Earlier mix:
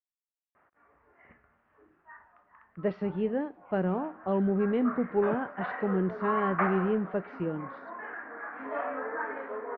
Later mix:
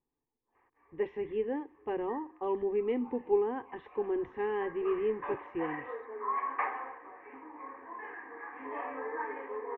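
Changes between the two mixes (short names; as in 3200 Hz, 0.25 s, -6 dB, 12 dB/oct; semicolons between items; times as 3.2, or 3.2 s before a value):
speech: entry -1.85 s; master: add fixed phaser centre 940 Hz, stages 8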